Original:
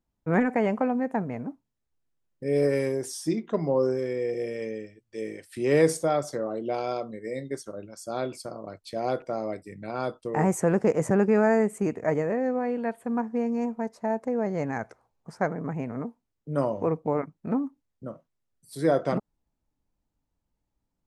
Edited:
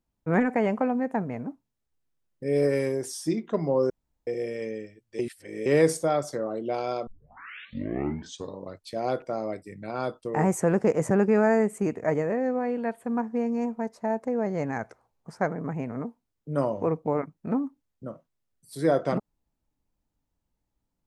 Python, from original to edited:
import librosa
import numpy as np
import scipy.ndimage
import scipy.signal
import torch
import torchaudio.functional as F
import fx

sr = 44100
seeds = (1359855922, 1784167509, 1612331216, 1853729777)

y = fx.edit(x, sr, fx.room_tone_fill(start_s=3.9, length_s=0.37),
    fx.reverse_span(start_s=5.19, length_s=0.47),
    fx.tape_start(start_s=7.07, length_s=1.75), tone=tone)